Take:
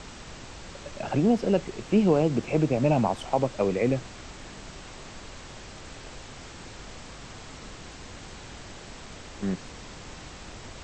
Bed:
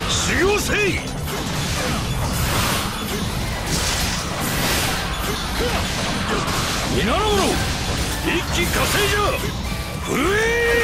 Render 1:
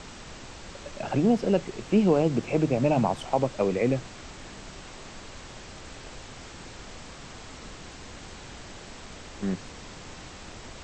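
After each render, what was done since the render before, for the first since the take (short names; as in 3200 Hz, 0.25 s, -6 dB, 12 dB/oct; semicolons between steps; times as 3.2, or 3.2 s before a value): de-hum 50 Hz, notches 3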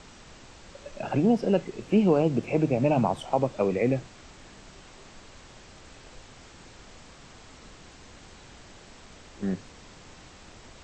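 noise print and reduce 6 dB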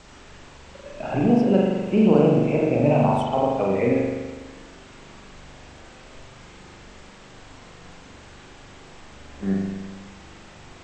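spring tank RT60 1.3 s, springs 41 ms, chirp 80 ms, DRR -3 dB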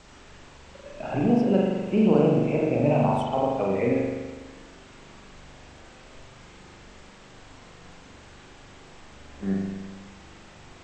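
gain -3 dB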